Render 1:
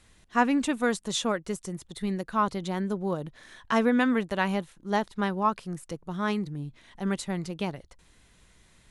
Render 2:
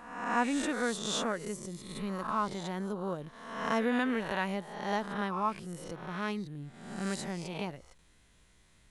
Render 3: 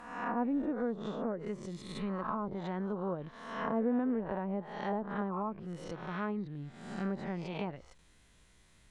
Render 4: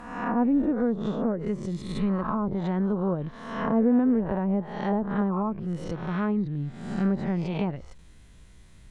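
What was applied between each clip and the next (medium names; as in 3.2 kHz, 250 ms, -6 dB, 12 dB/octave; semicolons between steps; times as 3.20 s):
reverse spectral sustain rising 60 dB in 0.92 s; trim -7.5 dB
low-pass that closes with the level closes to 630 Hz, closed at -28.5 dBFS
bass shelf 280 Hz +10.5 dB; trim +4.5 dB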